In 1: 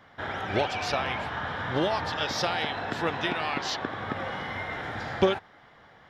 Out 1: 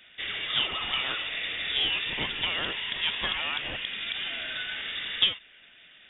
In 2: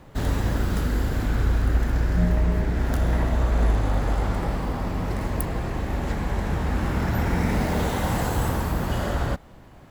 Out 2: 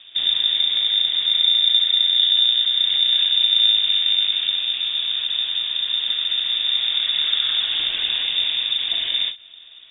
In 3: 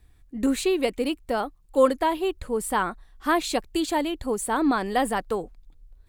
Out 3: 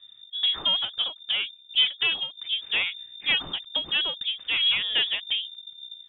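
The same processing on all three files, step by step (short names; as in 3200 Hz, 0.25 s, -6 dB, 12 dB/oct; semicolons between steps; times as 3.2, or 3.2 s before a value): one diode to ground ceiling -21 dBFS; low shelf 120 Hz +5 dB; inverted band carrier 3600 Hz; ending taper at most 210 dB/s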